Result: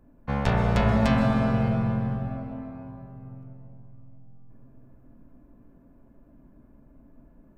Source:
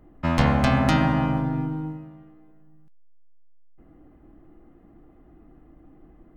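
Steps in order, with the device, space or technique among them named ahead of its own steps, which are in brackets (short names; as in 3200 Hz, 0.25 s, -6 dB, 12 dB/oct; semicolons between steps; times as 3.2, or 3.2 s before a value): slowed and reverbed (varispeed -16%; reverb RT60 4.0 s, pre-delay 0.12 s, DRR 4 dB); gain -4 dB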